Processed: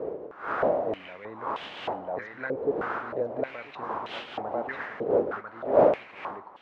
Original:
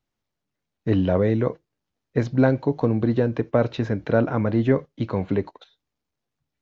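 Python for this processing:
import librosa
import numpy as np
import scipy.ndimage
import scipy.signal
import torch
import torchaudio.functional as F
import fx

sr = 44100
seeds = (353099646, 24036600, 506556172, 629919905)

p1 = fx.dmg_wind(x, sr, seeds[0], corner_hz=590.0, level_db=-21.0)
p2 = p1 + fx.echo_single(p1, sr, ms=995, db=-3.0, dry=0)
y = fx.filter_held_bandpass(p2, sr, hz=3.2, low_hz=460.0, high_hz=3100.0)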